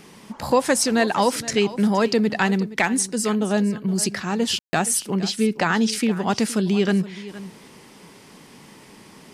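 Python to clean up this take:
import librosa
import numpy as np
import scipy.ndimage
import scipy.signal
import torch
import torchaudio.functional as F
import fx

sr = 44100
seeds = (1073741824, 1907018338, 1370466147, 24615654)

y = fx.fix_ambience(x, sr, seeds[0], print_start_s=7.8, print_end_s=8.3, start_s=4.59, end_s=4.73)
y = fx.fix_echo_inverse(y, sr, delay_ms=469, level_db=-16.5)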